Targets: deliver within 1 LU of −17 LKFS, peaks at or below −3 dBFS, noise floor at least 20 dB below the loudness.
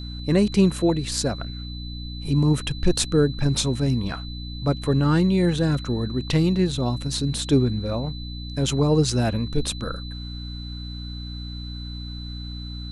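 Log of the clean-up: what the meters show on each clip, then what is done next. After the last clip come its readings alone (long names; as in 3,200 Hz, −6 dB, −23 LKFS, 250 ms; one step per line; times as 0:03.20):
mains hum 60 Hz; hum harmonics up to 300 Hz; level of the hum −31 dBFS; interfering tone 4,000 Hz; level of the tone −39 dBFS; integrated loudness −23.0 LKFS; sample peak −7.0 dBFS; target loudness −17.0 LKFS
→ mains-hum notches 60/120/180/240/300 Hz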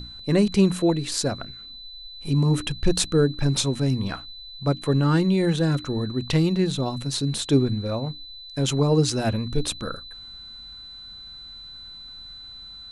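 mains hum none found; interfering tone 4,000 Hz; level of the tone −39 dBFS
→ notch filter 4,000 Hz, Q 30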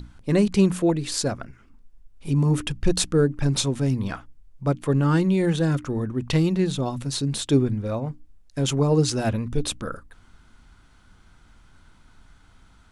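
interfering tone none found; integrated loudness −23.5 LKFS; sample peak −7.5 dBFS; target loudness −17.0 LKFS
→ level +6.5 dB
brickwall limiter −3 dBFS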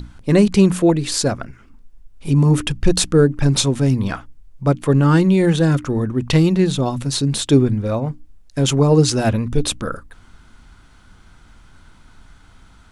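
integrated loudness −17.0 LKFS; sample peak −3.0 dBFS; background noise floor −48 dBFS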